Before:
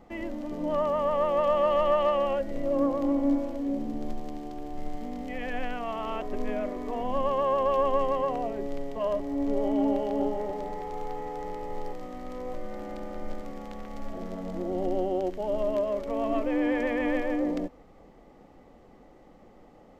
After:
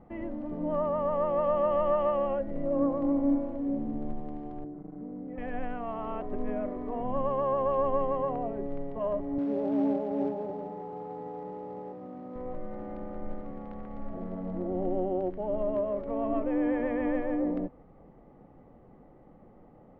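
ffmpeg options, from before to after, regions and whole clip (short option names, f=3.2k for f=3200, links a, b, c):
-filter_complex "[0:a]asettb=1/sr,asplit=3[a][b][c];[a]atrim=end=4.644[d];[b]atrim=start=4.64:end=5.38,asetpts=PTS-STARTPTS,afade=t=in:d=0.004:c=qsin,afade=t=out:st=0.736:d=0.004:c=qsin,volume=29.5dB,asoftclip=hard,volume=-29.5dB,bandpass=f=270:t=q:w=0.79,aecho=1:1:6.2:0.49,atrim=end_sample=32634[e];[c]atrim=start=5.376[f];[d][e]acrossfade=d=0.004:c1=hsin:c2=qsin[g];[g][f]acrossfade=d=0.004:c1=qsin:c2=hsin,asettb=1/sr,asplit=3[h][i][j];[h]atrim=end=9.384[k];[i]atrim=start=9.38:end=12.36,asetpts=PTS-STARTPTS,afade=t=in:d=0.004:c=qsin,afade=t=out:st=2.976:d=0.004:c=qsin,highpass=f=130:w=0.5412,highpass=f=130:w=1.3066,equalizer=f=3.8k:t=o:w=2.3:g=-13,acrusher=bits=4:mode=log:mix=0:aa=0.000001[l];[j]atrim=start=12.356[m];[k][l]acrossfade=d=0.004:c1=hsin:c2=qsin[n];[n][m]acrossfade=d=0.004:c1=qsin:c2=hsin,lowpass=1.5k,equalizer=f=130:w=1.2:g=8,volume=-2.5dB"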